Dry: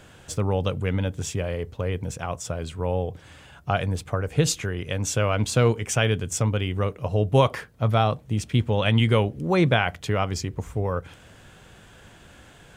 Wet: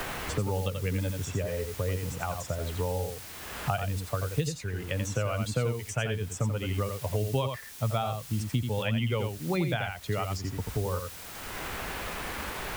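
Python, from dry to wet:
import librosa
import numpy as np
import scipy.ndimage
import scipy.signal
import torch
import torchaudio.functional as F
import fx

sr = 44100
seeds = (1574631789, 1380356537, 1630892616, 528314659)

p1 = fx.bin_expand(x, sr, power=1.5)
p2 = fx.quant_dither(p1, sr, seeds[0], bits=8, dither='triangular')
p3 = p2 + fx.echo_single(p2, sr, ms=85, db=-6.5, dry=0)
p4 = fx.band_squash(p3, sr, depth_pct=100)
y = p4 * 10.0 ** (-4.5 / 20.0)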